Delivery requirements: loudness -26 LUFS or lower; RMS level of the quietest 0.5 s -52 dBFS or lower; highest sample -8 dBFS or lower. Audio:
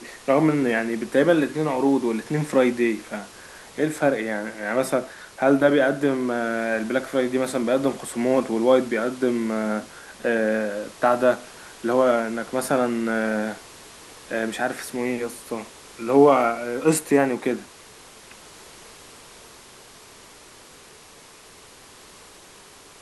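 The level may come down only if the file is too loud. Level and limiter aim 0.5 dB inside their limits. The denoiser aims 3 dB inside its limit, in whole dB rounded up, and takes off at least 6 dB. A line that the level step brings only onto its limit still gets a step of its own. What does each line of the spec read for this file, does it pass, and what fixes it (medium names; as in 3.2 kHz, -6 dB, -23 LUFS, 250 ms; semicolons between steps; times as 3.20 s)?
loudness -22.5 LUFS: fail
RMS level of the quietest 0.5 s -48 dBFS: fail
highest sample -5.0 dBFS: fail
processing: noise reduction 6 dB, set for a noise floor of -48 dBFS; trim -4 dB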